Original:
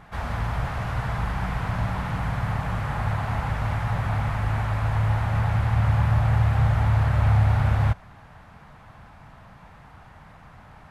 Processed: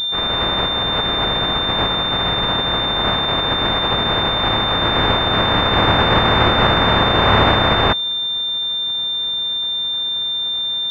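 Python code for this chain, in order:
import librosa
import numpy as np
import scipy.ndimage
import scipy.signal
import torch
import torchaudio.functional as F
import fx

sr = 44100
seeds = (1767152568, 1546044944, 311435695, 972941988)

y = fx.spec_flatten(x, sr, power=0.21)
y = fx.vibrato(y, sr, rate_hz=2.0, depth_cents=6.3)
y = fx.pwm(y, sr, carrier_hz=3600.0)
y = y * librosa.db_to_amplitude(8.0)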